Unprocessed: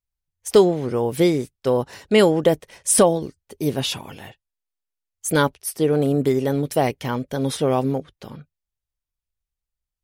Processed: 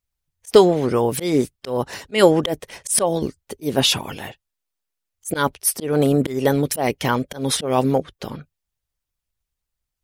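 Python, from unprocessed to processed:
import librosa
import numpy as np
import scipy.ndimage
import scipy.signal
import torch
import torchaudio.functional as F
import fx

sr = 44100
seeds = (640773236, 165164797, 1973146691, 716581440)

y = fx.hpss(x, sr, part='percussive', gain_db=7)
y = fx.auto_swell(y, sr, attack_ms=193.0)
y = y * librosa.db_to_amplitude(2.0)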